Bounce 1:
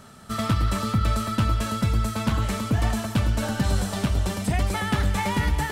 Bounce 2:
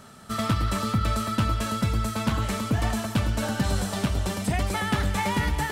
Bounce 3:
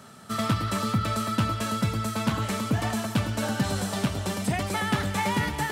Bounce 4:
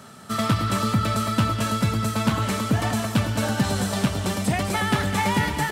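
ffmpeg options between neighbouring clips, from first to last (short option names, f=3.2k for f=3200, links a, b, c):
-af "lowshelf=f=99:g=-5"
-af "highpass=f=90:w=0.5412,highpass=f=90:w=1.3066"
-af "aecho=1:1:203:0.266,volume=3.5dB"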